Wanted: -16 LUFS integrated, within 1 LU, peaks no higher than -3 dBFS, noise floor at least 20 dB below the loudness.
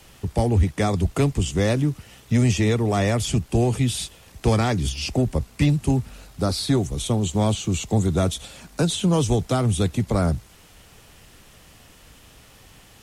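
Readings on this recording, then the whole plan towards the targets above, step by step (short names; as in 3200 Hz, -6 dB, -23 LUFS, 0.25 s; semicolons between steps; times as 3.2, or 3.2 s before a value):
loudness -22.5 LUFS; peak -7.0 dBFS; loudness target -16.0 LUFS
-> gain +6.5 dB; limiter -3 dBFS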